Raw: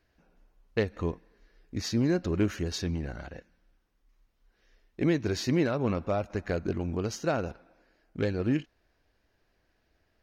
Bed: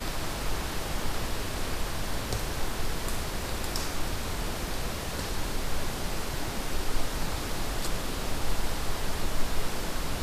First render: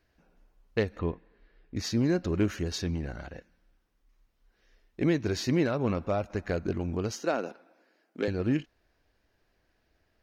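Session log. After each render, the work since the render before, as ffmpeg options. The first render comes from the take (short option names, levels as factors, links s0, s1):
-filter_complex "[0:a]asettb=1/sr,asplit=3[s0][s1][s2];[s0]atrim=end=0.994[s3];[s1]atrim=start=0.99:end=1.76,asetpts=PTS-STARTPTS,afade=t=in:d=0.004:c=qsin,afade=t=out:st=0.766:d=0.004:c=qsin,lowpass=f=3800:w=0.5412,lowpass=f=3800:w=1.3066[s4];[s2]atrim=start=1.756[s5];[s3][s4]acrossfade=d=0.004:c1=hsin:c2=qsin[s6];[s6][s5]acrossfade=d=0.004:c1=qsin:c2=hsin,asettb=1/sr,asplit=3[s7][s8][s9];[s7]atrim=end=7.124[s10];[s8]atrim=start=7.12:end=8.28,asetpts=PTS-STARTPTS,afade=t=in:d=0.004:c=qsin,afade=t=out:st=1.156:d=0.004:c=qsin,highpass=f=220:w=0.5412,highpass=f=220:w=1.3066[s11];[s9]atrim=start=8.276[s12];[s10][s11]acrossfade=d=0.004:c1=hsin:c2=qsin[s13];[s13][s12]acrossfade=d=0.004:c1=qsin:c2=hsin"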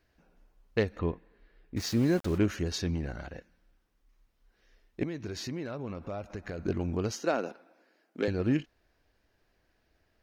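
-filter_complex "[0:a]asplit=3[s0][s1][s2];[s0]afade=t=out:st=1.76:d=0.02[s3];[s1]aeval=exprs='val(0)*gte(abs(val(0)),0.0106)':c=same,afade=t=in:st=1.76:d=0.02,afade=t=out:st=2.37:d=0.02[s4];[s2]afade=t=in:st=2.37:d=0.02[s5];[s3][s4][s5]amix=inputs=3:normalize=0,asettb=1/sr,asplit=3[s6][s7][s8];[s6]atrim=end=5.034[s9];[s7]atrim=start=5.03:end=6.59,asetpts=PTS-STARTPTS,afade=t=in:d=0.004:c=qsin,afade=t=out:st=1.556:d=0.004:c=qsin,acompressor=threshold=0.0158:ratio=3:attack=3.2:release=140:knee=1:detection=peak[s10];[s8]atrim=start=6.586[s11];[s9][s10]acrossfade=d=0.004:c1=hsin:c2=qsin[s12];[s12][s11]acrossfade=d=0.004:c1=qsin:c2=hsin"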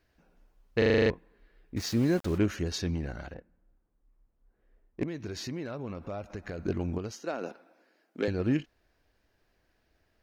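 -filter_complex "[0:a]asettb=1/sr,asplit=3[s0][s1][s2];[s0]atrim=end=3.344[s3];[s1]atrim=start=3.34:end=5.08,asetpts=PTS-STARTPTS,afade=t=in:d=0.004:c=qsin,afade=t=out:st=1.736:d=0.004:c=qsin,adynamicsmooth=sensitivity=5:basefreq=1100[s4];[s2]atrim=start=5.076[s5];[s3][s4]acrossfade=d=0.004:c1=hsin:c2=qsin[s6];[s6][s5]acrossfade=d=0.004:c1=qsin:c2=hsin,asplit=11[s7][s8][s9][s10][s11][s12][s13][s14][s15][s16][s17];[s7]atrim=end=0.822[s18];[s8]atrim=start=0.778:end=0.822[s19];[s9]atrim=start=0.778:end=0.822[s20];[s10]atrim=start=0.778:end=0.822[s21];[s11]atrim=start=0.778:end=0.822[s22];[s12]atrim=start=0.778:end=0.822[s23];[s13]atrim=start=0.778:end=0.822[s24];[s14]atrim=start=0.778:end=0.822[s25];[s15]atrim=start=1.098:end=6.982[s26];[s16]atrim=start=6.978:end=7.412,asetpts=PTS-STARTPTS,volume=0.501[s27];[s17]atrim=start=7.408[s28];[s18][s19]acrossfade=d=0.004:c1=hsin:c2=hsin[s29];[s29][s20]acrossfade=d=0.004:c1=hsin:c2=hsin[s30];[s30][s21]acrossfade=d=0.004:c1=hsin:c2=hsin[s31];[s31][s22]acrossfade=d=0.004:c1=hsin:c2=hsin[s32];[s32][s23]acrossfade=d=0.004:c1=hsin:c2=hsin[s33];[s33][s24]acrossfade=d=0.004:c1=hsin:c2=hsin[s34];[s34][s25]acrossfade=d=0.004:c1=hsin:c2=hsin[s35];[s35][s26]acrossfade=d=0.004:c1=hsin:c2=hsin[s36];[s36][s27]acrossfade=d=0.004:c1=hsin:c2=hsin[s37];[s37][s28]acrossfade=d=0.004:c1=hsin:c2=hsin"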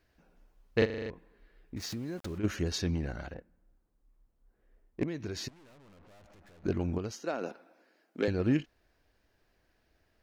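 -filter_complex "[0:a]asplit=3[s0][s1][s2];[s0]afade=t=out:st=0.84:d=0.02[s3];[s1]acompressor=threshold=0.0178:ratio=5:attack=3.2:release=140:knee=1:detection=peak,afade=t=in:st=0.84:d=0.02,afade=t=out:st=2.43:d=0.02[s4];[s2]afade=t=in:st=2.43:d=0.02[s5];[s3][s4][s5]amix=inputs=3:normalize=0,asettb=1/sr,asplit=3[s6][s7][s8];[s6]atrim=end=5.484[s9];[s7]atrim=start=5.48:end=6.64,asetpts=PTS-STARTPTS,afade=t=in:d=0.004:c=qsin,afade=t=out:st=1.156:d=0.004:c=qsin,aeval=exprs='(tanh(708*val(0)+0.6)-tanh(0.6))/708':c=same[s10];[s8]atrim=start=6.636[s11];[s9][s10]acrossfade=d=0.004:c1=hsin:c2=qsin[s12];[s12][s11]acrossfade=d=0.004:c1=qsin:c2=hsin"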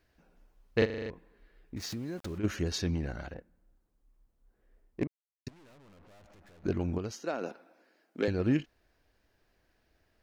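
-filter_complex "[0:a]asettb=1/sr,asplit=3[s0][s1][s2];[s0]atrim=end=5.074[s3];[s1]atrim=start=5.07:end=5.47,asetpts=PTS-STARTPTS,afade=t=in:d=0.004:c=qsin,afade=t=out:st=0.396:d=0.004:c=qsin,acrusher=bits=2:mix=0:aa=0.5[s4];[s2]atrim=start=5.466[s5];[s3][s4]acrossfade=d=0.004:c1=hsin:c2=qsin[s6];[s6][s5]acrossfade=d=0.004:c1=qsin:c2=hsin"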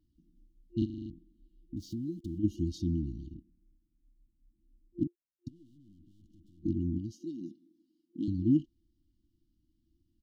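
-af "afftfilt=real='re*(1-between(b*sr/4096,350,2800))':imag='im*(1-between(b*sr/4096,350,2800))':win_size=4096:overlap=0.75,firequalizer=gain_entry='entry(170,0);entry(650,12);entry(1100,13);entry(2100,-13)':delay=0.05:min_phase=1"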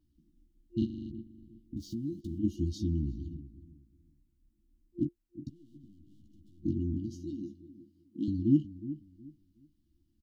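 -filter_complex "[0:a]asplit=2[s0][s1];[s1]adelay=14,volume=0.447[s2];[s0][s2]amix=inputs=2:normalize=0,asplit=2[s3][s4];[s4]adelay=366,lowpass=f=840:p=1,volume=0.211,asplit=2[s5][s6];[s6]adelay=366,lowpass=f=840:p=1,volume=0.26,asplit=2[s7][s8];[s8]adelay=366,lowpass=f=840:p=1,volume=0.26[s9];[s3][s5][s7][s9]amix=inputs=4:normalize=0"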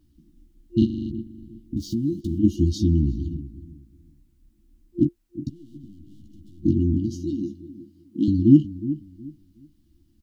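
-af "volume=3.76,alimiter=limit=0.708:level=0:latency=1"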